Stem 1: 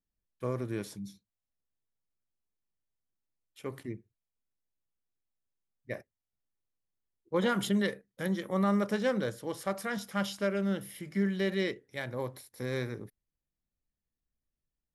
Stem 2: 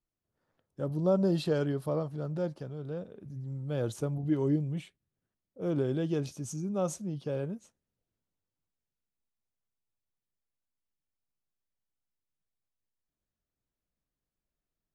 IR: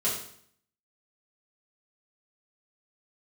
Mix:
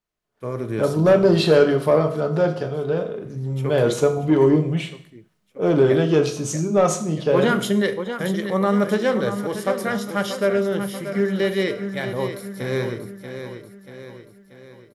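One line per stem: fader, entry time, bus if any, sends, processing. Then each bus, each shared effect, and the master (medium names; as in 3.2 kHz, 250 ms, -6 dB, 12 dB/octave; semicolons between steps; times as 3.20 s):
-5.0 dB, 0.00 s, send -16.5 dB, echo send -8 dB, peaking EQ 570 Hz +3 dB 2.2 oct
-3.5 dB, 0.00 s, send -10.5 dB, no echo send, overdrive pedal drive 16 dB, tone 3.1 kHz, clips at -15 dBFS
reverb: on, RT60 0.60 s, pre-delay 4 ms
echo: feedback delay 635 ms, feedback 52%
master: level rider gain up to 11 dB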